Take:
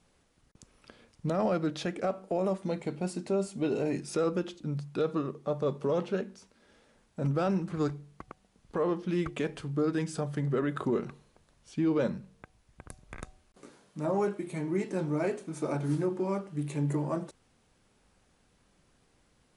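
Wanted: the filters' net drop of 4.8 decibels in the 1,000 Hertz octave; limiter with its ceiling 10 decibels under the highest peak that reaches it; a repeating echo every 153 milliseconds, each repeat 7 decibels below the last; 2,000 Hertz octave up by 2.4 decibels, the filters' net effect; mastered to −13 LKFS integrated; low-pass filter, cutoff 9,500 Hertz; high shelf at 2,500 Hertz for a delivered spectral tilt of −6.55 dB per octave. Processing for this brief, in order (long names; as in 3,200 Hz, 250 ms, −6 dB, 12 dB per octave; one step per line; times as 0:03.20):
low-pass filter 9,500 Hz
parametric band 1,000 Hz −8.5 dB
parametric band 2,000 Hz +8 dB
high-shelf EQ 2,500 Hz −4 dB
brickwall limiter −29 dBFS
repeating echo 153 ms, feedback 45%, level −7 dB
level +24.5 dB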